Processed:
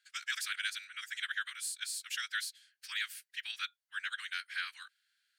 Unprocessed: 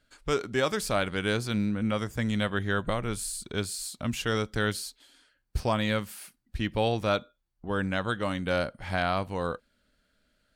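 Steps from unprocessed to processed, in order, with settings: elliptic high-pass 1.6 kHz, stop band 60 dB; time stretch by phase-locked vocoder 0.51×

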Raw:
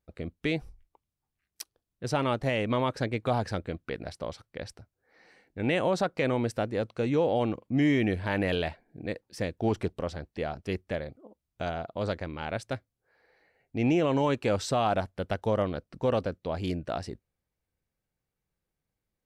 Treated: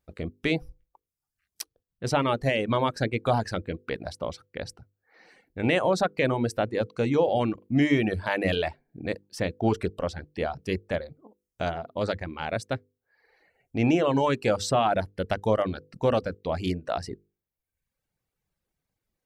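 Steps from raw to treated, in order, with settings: hum notches 50/100/150/200/250/300/350/400/450/500 Hz; reverb removal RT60 0.86 s; trim +4.5 dB

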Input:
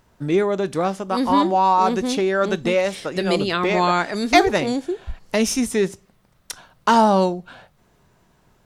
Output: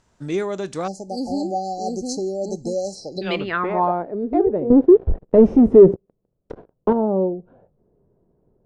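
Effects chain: 0.88–3.22 s: spectral selection erased 870–4000 Hz; 4.70–6.93 s: waveshaping leveller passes 5; low-pass sweep 7.3 kHz -> 450 Hz, 2.90–4.12 s; trim -5 dB

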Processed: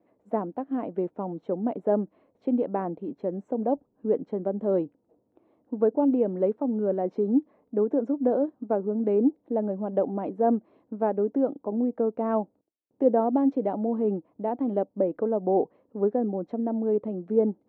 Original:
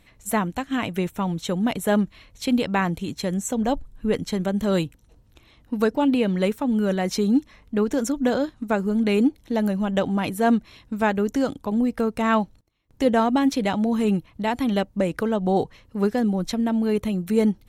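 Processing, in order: gate with hold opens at -51 dBFS; Butterworth band-pass 440 Hz, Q 0.93

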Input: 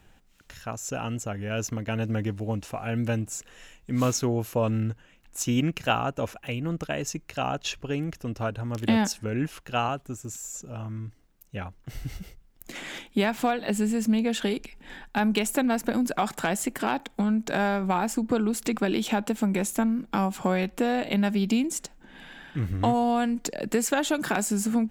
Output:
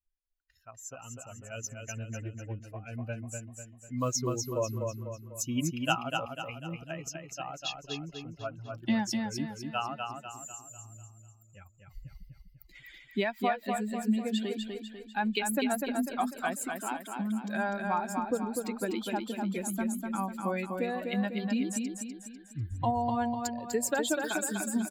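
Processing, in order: expander on every frequency bin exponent 2; bass shelf 260 Hz -5.5 dB; on a send: feedback delay 248 ms, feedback 45%, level -4.5 dB

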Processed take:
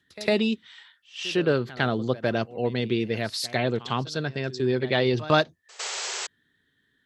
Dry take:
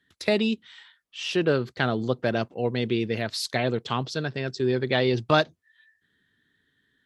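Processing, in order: painted sound noise, 5.79–6.27 s, 370–8100 Hz -32 dBFS; pre-echo 104 ms -18 dB

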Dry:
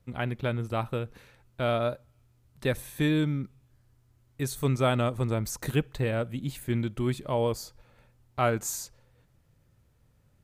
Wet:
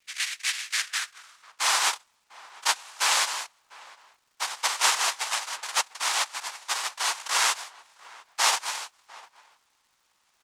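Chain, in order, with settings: high-pass 290 Hz 12 dB/octave; noise-vocoded speech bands 1; echo from a far wall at 120 m, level -20 dB; high-pass sweep 2 kHz -> 920 Hz, 0.63–1.74 s; crackle 330 per s -60 dBFS; trim +2.5 dB

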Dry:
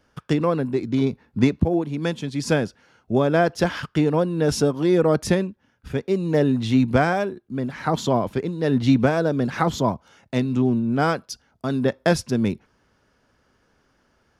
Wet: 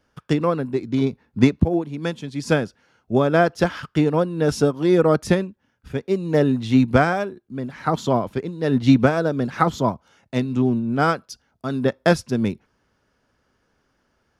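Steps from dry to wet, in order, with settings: dynamic bell 1.3 kHz, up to +5 dB, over -42 dBFS, Q 6; upward expansion 1.5:1, over -27 dBFS; trim +3.5 dB

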